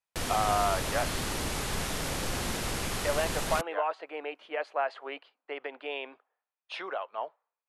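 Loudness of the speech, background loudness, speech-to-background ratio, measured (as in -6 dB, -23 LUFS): -33.5 LUFS, -32.5 LUFS, -1.0 dB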